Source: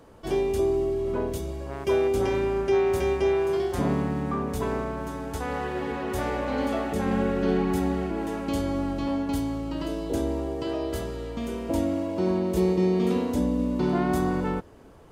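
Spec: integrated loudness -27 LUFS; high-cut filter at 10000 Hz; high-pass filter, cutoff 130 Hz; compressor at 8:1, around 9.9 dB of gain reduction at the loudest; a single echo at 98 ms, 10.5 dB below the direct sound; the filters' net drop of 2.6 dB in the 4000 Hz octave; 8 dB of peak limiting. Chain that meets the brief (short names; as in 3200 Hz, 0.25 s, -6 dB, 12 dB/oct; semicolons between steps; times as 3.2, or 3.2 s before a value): HPF 130 Hz; LPF 10000 Hz; bell 4000 Hz -3.5 dB; compressor 8:1, threshold -30 dBFS; limiter -29 dBFS; echo 98 ms -10.5 dB; gain +10 dB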